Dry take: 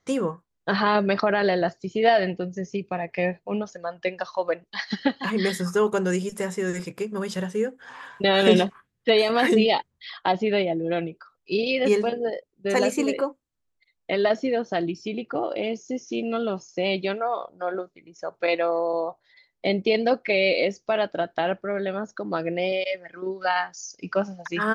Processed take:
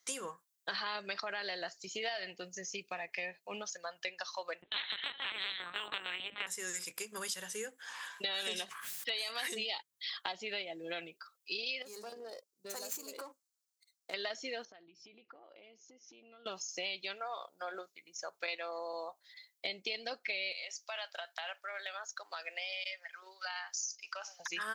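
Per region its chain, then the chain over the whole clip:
4.62–6.47 tilt shelf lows +3.5 dB, about 1100 Hz + LPC vocoder at 8 kHz pitch kept + spectral compressor 4:1
8.65–9.48 low shelf 470 Hz -7 dB + notches 50/100/150 Hz + sustainer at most 44 dB/s
11.82–14.14 band shelf 2500 Hz -13 dB 1.2 oct + compressor 10:1, threshold -29 dBFS + running maximum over 3 samples
14.65–16.46 notches 50/100/150 Hz + compressor 20:1, threshold -39 dBFS + tape spacing loss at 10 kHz 31 dB
20.52–24.4 HPF 650 Hz 24 dB/oct + compressor, threshold -28 dBFS
whole clip: differentiator; compressor 4:1, threshold -46 dBFS; gain +9 dB

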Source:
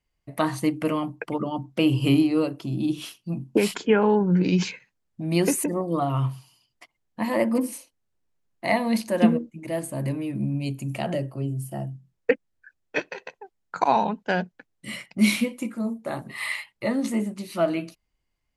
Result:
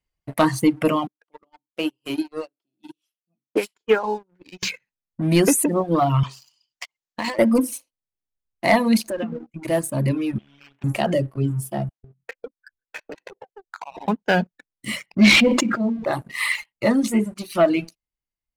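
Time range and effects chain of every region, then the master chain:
1.07–4.63 HPF 370 Hz + upward expander 2.5:1, over -36 dBFS
6.23–7.39 steep low-pass 7400 Hz + tilt +3.5 dB/oct + negative-ratio compressor -33 dBFS
9.01–9.49 treble ducked by the level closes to 2900 Hz, closed at -18 dBFS + compressor 16:1, threshold -28 dBFS
10.38–10.84 CVSD 16 kbps + HPF 730 Hz 6 dB/oct + compressor 20:1, threshold -41 dBFS
11.89–14.08 chopper 3.3 Hz, depth 60%, duty 65% + bands offset in time highs, lows 0.15 s, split 690 Hz + compressor 10:1, threshold -37 dBFS
15.06–16.13 LPF 5500 Hz 24 dB/oct + sustainer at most 24 dB/s
whole clip: sample leveller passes 2; reverb removal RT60 1.2 s

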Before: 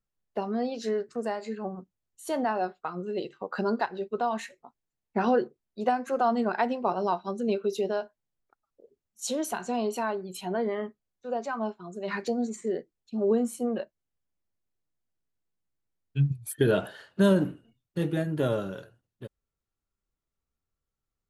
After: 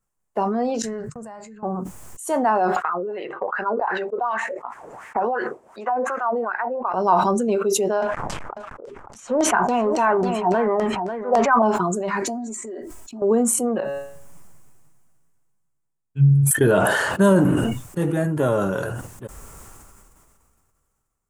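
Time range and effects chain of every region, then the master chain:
0.82–1.63 gate -52 dBFS, range -31 dB + EQ curve 150 Hz 0 dB, 300 Hz -24 dB, 640 Hz -16 dB
2.76–6.94 wah 2.7 Hz 470–2000 Hz, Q 3.5 + three-band squash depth 100%
8.02–11.62 G.711 law mismatch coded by mu + LFO low-pass saw down 3.6 Hz 650–5000 Hz + echo 0.545 s -13 dB
12.22–13.22 comb 3.1 ms, depth 90% + compressor 4:1, threshold -39 dBFS
13.8–16.51 bell 150 Hz +9.5 dB 0.65 oct + flange 1.8 Hz, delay 6 ms, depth 9.6 ms, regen -23% + resonator 140 Hz, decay 0.57 s, mix 50%
whole clip: graphic EQ 1000/4000/8000 Hz +7/-11/+10 dB; sustainer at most 24 dB/s; gain +4.5 dB

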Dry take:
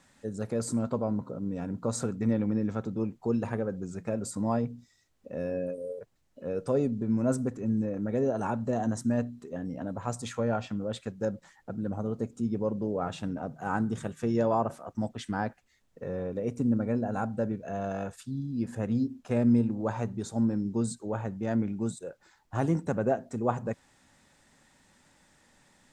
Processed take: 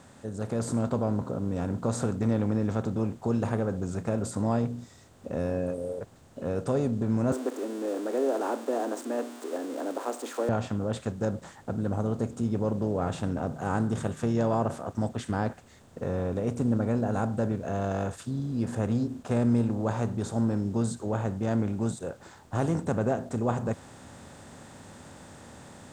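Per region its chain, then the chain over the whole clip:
7.32–10.49 switching spikes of -32.5 dBFS + steep high-pass 290 Hz 72 dB/oct + tilt -3 dB/oct
whole clip: per-bin compression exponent 0.6; bell 81 Hz +11 dB 0.97 oct; AGC gain up to 5.5 dB; gain -9 dB

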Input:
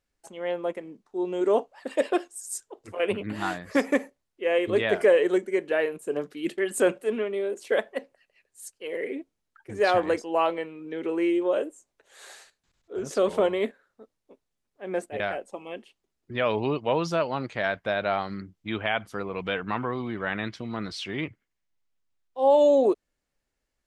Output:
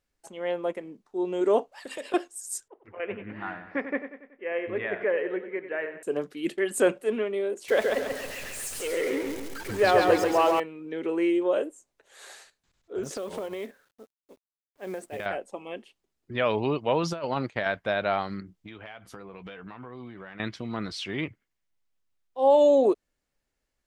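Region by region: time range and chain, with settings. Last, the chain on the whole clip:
1.72–2.14 compressor 4:1, threshold -37 dBFS + high shelf 2100 Hz +11 dB
2.68–6.03 ladder low-pass 2500 Hz, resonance 40% + feedback echo 94 ms, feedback 52%, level -11 dB
7.68–10.6 zero-crossing step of -34 dBFS + feedback echo 0.137 s, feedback 45%, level -3.5 dB
13.03–15.26 compressor 10:1, threshold -30 dBFS + companded quantiser 6-bit
17.03–17.66 gate -42 dBFS, range -16 dB + negative-ratio compressor -28 dBFS, ratio -0.5
18.4–20.4 compressor 8:1, threshold -39 dBFS + doubler 16 ms -11 dB
whole clip: dry

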